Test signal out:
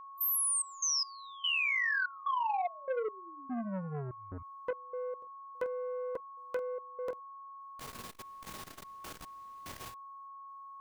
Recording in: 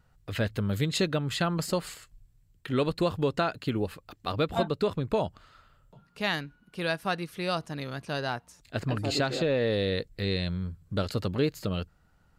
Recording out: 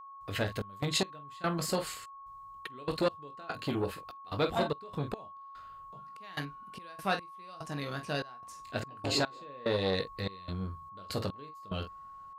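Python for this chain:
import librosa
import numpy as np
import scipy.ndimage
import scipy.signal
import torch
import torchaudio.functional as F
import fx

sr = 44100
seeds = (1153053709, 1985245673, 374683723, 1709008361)

y = fx.low_shelf(x, sr, hz=180.0, db=-6.0)
y = fx.room_early_taps(y, sr, ms=(21, 47), db=(-7.5, -11.0))
y = fx.step_gate(y, sr, bpm=73, pattern='.xx.x..xxx', floor_db=-24.0, edge_ms=4.5)
y = y + 10.0 ** (-46.0 / 20.0) * np.sin(2.0 * np.pi * 1100.0 * np.arange(len(y)) / sr)
y = fx.transformer_sat(y, sr, knee_hz=690.0)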